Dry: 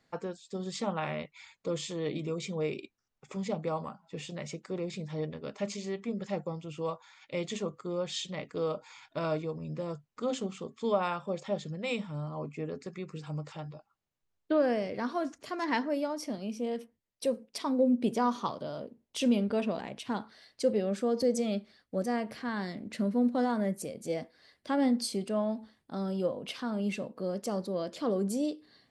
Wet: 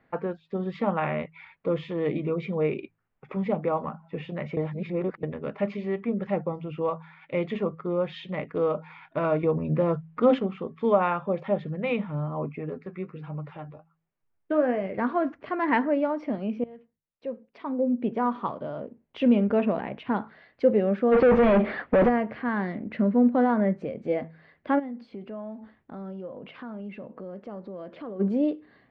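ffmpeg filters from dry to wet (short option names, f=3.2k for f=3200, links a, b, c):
-filter_complex "[0:a]asettb=1/sr,asplit=3[a][b][c];[a]atrim=end=9.434[d];[b]atrim=start=9.43:end=10.39,asetpts=PTS-STARTPTS,afade=t=in:d=0.004:c=qsin,afade=t=out:st=0.956:d=0.004:c=qsin,acontrast=39[e];[c]atrim=start=10.386[f];[d][e]acrossfade=d=0.004:c1=hsin:c2=qsin[g];[g][f]acrossfade=d=0.004:c1=qsin:c2=hsin,asettb=1/sr,asplit=3[h][i][j];[h]atrim=end=12.584[k];[i]atrim=start=12.58:end=14.98,asetpts=PTS-STARTPTS,afade=t=in:d=0.004:c=qsin,afade=t=out:st=2.396:d=0.004:c=qsin,flanger=delay=4.6:depth=6.9:regen=46:speed=1.3:shape=triangular[l];[j]atrim=start=14.976[m];[k][l]acrossfade=d=0.004:c1=hsin:c2=qsin[n];[n][m]acrossfade=d=0.004:c1=qsin:c2=hsin,asplit=3[o][p][q];[o]afade=t=out:st=21.11:d=0.02[r];[p]asplit=2[s][t];[t]highpass=f=720:p=1,volume=39dB,asoftclip=type=tanh:threshold=-18dB[u];[s][u]amix=inputs=2:normalize=0,lowpass=f=1.1k:p=1,volume=-6dB,afade=t=in:st=21.11:d=0.02,afade=t=out:st=22.08:d=0.02[v];[q]afade=t=in:st=22.08:d=0.02[w];[r][v][w]amix=inputs=3:normalize=0,asplit=3[x][y][z];[x]afade=t=out:st=24.78:d=0.02[aa];[y]acompressor=threshold=-46dB:ratio=3:attack=3.2:release=140:knee=1:detection=peak,afade=t=in:st=24.78:d=0.02,afade=t=out:st=28.19:d=0.02[ab];[z]afade=t=in:st=28.19:d=0.02[ac];[aa][ab][ac]amix=inputs=3:normalize=0,asplit=4[ad][ae][af][ag];[ad]atrim=end=4.572[ah];[ae]atrim=start=4.568:end=5.232,asetpts=PTS-STARTPTS,areverse[ai];[af]atrim=start=5.228:end=16.64,asetpts=PTS-STARTPTS,afade=t=out:st=11.408:d=0.004:c=hsin:silence=0.0944061[aj];[ag]atrim=start=16.64,asetpts=PTS-STARTPTS,afade=t=in:d=2.96:silence=0.0944061[ak];[ah][ai]acrossfade=d=0.004:c1=hsin:c2=hsin[al];[aj][ak]concat=n=2:v=0:a=1[am];[al][am]acrossfade=d=0.004:c1=hsin:c2=hsin,lowpass=f=2.4k:w=0.5412,lowpass=f=2.4k:w=1.3066,bandreject=f=53.8:t=h:w=4,bandreject=f=107.6:t=h:w=4,bandreject=f=161.4:t=h:w=4,volume=7dB"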